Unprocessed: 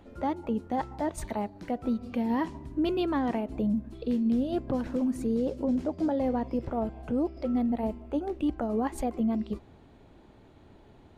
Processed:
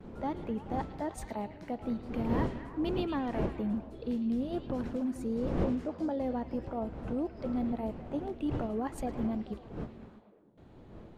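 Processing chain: wind noise 330 Hz -35 dBFS; gate with hold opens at -41 dBFS; repeats whose band climbs or falls 109 ms, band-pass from 3.3 kHz, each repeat -0.7 oct, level -6 dB; trim -5.5 dB

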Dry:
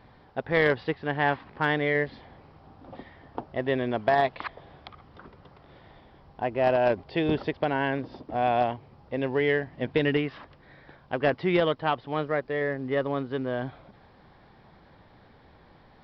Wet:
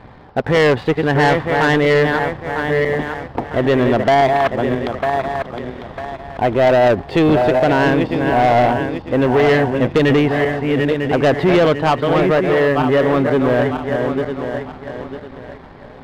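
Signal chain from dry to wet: backward echo that repeats 475 ms, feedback 56%, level -8 dB; low-pass 2.2 kHz 6 dB/octave; waveshaping leveller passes 1; in parallel at +1 dB: peak limiter -22 dBFS, peak gain reduction 10.5 dB; on the sum: saturation -16 dBFS, distortion -15 dB; trim +8 dB

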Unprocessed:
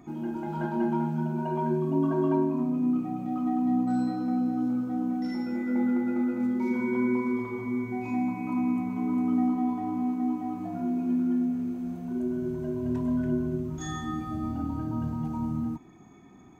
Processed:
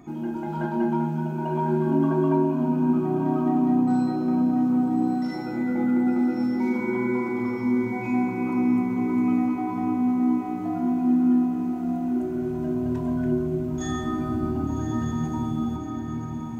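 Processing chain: echo that smears into a reverb 1162 ms, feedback 42%, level -5 dB; trim +3 dB

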